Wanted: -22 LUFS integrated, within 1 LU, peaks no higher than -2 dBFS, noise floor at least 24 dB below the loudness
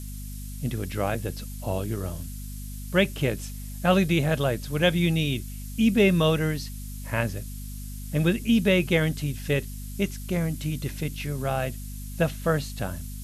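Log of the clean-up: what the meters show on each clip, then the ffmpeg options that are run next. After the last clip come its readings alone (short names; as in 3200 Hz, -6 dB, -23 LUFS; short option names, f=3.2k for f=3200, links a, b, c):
hum 50 Hz; harmonics up to 250 Hz; hum level -34 dBFS; noise floor -36 dBFS; noise floor target -50 dBFS; loudness -26.0 LUFS; peak -8.5 dBFS; loudness target -22.0 LUFS
-> -af "bandreject=f=50:t=h:w=4,bandreject=f=100:t=h:w=4,bandreject=f=150:t=h:w=4,bandreject=f=200:t=h:w=4,bandreject=f=250:t=h:w=4"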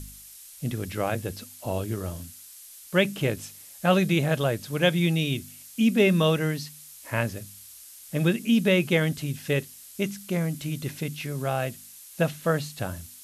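hum none; noise floor -47 dBFS; noise floor target -51 dBFS
-> -af "afftdn=nr=6:nf=-47"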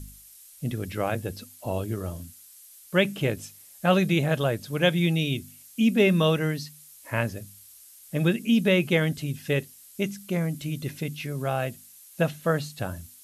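noise floor -51 dBFS; loudness -26.5 LUFS; peak -8.5 dBFS; loudness target -22.0 LUFS
-> -af "volume=4.5dB"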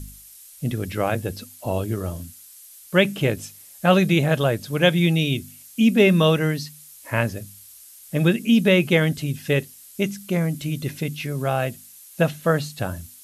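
loudness -22.0 LUFS; peak -4.0 dBFS; noise floor -46 dBFS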